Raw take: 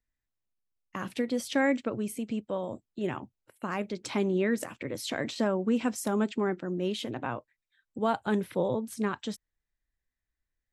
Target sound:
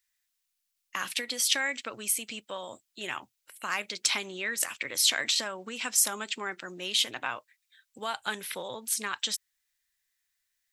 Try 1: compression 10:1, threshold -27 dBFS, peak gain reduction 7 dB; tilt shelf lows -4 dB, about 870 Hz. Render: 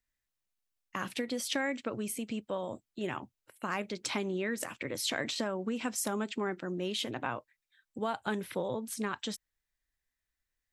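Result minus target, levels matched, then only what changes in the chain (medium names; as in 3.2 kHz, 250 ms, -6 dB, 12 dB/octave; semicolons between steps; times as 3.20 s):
1 kHz band +5.0 dB
change: tilt shelf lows -16 dB, about 870 Hz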